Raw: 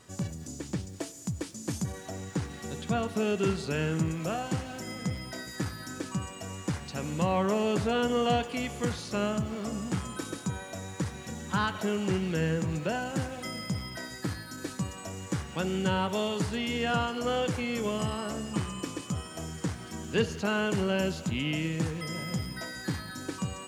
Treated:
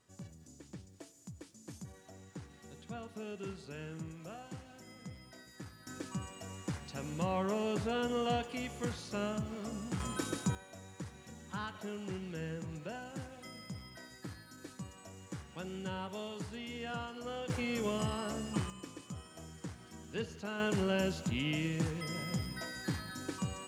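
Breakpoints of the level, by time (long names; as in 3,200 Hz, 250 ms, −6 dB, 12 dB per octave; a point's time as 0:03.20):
−15.5 dB
from 0:05.87 −7 dB
from 0:10.00 −0.5 dB
from 0:10.55 −12.5 dB
from 0:17.50 −4 dB
from 0:18.70 −12 dB
from 0:20.60 −4 dB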